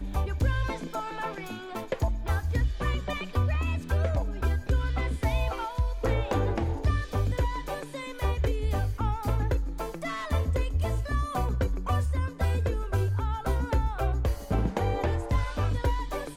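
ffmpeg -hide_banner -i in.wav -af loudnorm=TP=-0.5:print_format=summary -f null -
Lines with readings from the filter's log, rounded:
Input Integrated:    -29.6 LUFS
Input True Peak:     -13.7 dBTP
Input LRA:             1.5 LU
Input Threshold:     -39.6 LUFS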